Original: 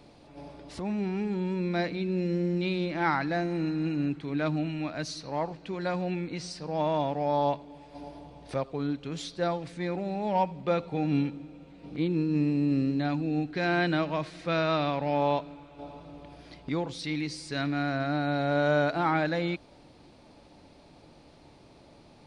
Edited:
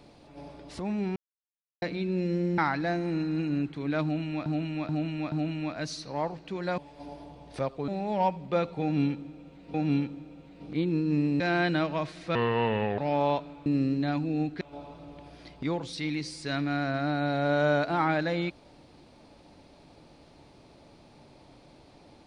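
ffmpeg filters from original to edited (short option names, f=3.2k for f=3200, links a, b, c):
-filter_complex "[0:a]asplit=15[a][b][c][d][e][f][g][h][i][j][k][l][m][n][o];[a]atrim=end=1.16,asetpts=PTS-STARTPTS,afade=t=out:st=1.156:d=0.004:c=hsin[p];[b]atrim=start=1.16:end=1.82,asetpts=PTS-STARTPTS,volume=0[q];[c]atrim=start=1.82:end=2.582,asetpts=PTS-STARTPTS,afade=t=in:d=0.004:c=hsin[r];[d]atrim=start=3.048:end=4.932[s];[e]atrim=start=4.498:end=4.932[t];[f]atrim=start=4.498:end=4.932[u];[g]atrim=start=4.498:end=5.962[v];[h]atrim=start=7.728:end=8.832[w];[i]atrim=start=10.028:end=11.892[x];[j]atrim=start=10.968:end=12.632[y];[k]atrim=start=13.578:end=14.534[z];[l]atrim=start=14.53:end=14.99,asetpts=PTS-STARTPTS,asetrate=32193,aresample=44100,atrim=end_sample=27789,asetpts=PTS-STARTPTS[aa];[m]atrim=start=14.986:end=15.672[ab];[n]atrim=start=12.628:end=13.582[ac];[o]atrim=start=15.668[ad];[p][q][r]concat=n=3:v=0:a=1[ae];[ae][s]acrossfade=d=0.004:c1=hsin:c2=hsin[af];[af][t]acrossfade=d=0.004:c1=hsin:c2=hsin[ag];[ag][u]acrossfade=d=0.004:c1=hsin:c2=hsin[ah];[ah][v]acrossfade=d=0.004:c1=hsin:c2=hsin[ai];[ai][w]acrossfade=d=0.004:c1=hsin:c2=hsin[aj];[aj][x]acrossfade=d=0.004:c1=hsin:c2=hsin[ak];[ak][y]acrossfade=d=0.004:c1=hsin:c2=hsin[al];[al][z]acrossfade=d=0.004:c1=hsin:c2=hsin[am];[am][aa]acrossfade=d=0.004:c1=hsin:c2=hsin[an];[an][ab]acrossfade=d=0.004:c1=hsin:c2=hsin[ao];[ao][ac]acrossfade=d=0.004:c1=hsin:c2=hsin[ap];[ap][ad]acrossfade=d=0.004:c1=hsin:c2=hsin"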